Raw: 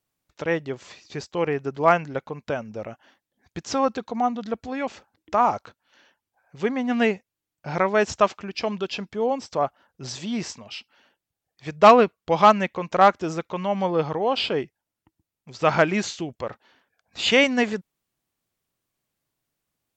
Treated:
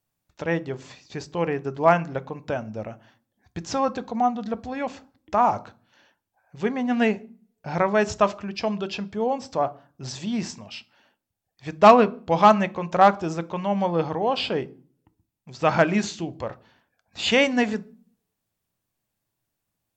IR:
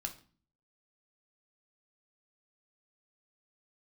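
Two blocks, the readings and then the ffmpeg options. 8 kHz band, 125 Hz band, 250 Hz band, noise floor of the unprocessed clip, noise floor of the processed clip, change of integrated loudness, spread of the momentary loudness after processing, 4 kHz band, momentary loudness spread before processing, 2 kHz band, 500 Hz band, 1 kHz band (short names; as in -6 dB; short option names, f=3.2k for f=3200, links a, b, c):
-1.5 dB, +2.0 dB, +1.0 dB, under -85 dBFS, -81 dBFS, -0.5 dB, 18 LU, -2.0 dB, 19 LU, -1.5 dB, -0.5 dB, 0.0 dB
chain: -filter_complex "[0:a]asplit=2[a][b];[b]equalizer=f=2.9k:w=0.48:g=-9.5[c];[1:a]atrim=start_sample=2205[d];[c][d]afir=irnorm=-1:irlink=0,volume=0.5dB[e];[a][e]amix=inputs=2:normalize=0,volume=-4dB"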